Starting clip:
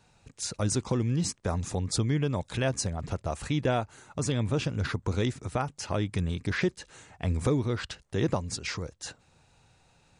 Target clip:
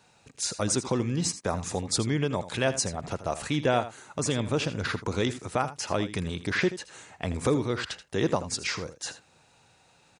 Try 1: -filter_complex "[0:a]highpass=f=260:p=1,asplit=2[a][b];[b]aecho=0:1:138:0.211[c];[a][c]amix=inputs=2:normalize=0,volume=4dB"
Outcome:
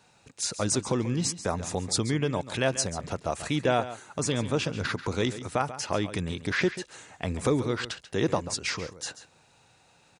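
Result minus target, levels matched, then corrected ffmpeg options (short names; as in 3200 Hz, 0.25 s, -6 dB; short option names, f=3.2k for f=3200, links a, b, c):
echo 57 ms late
-filter_complex "[0:a]highpass=f=260:p=1,asplit=2[a][b];[b]aecho=0:1:81:0.211[c];[a][c]amix=inputs=2:normalize=0,volume=4dB"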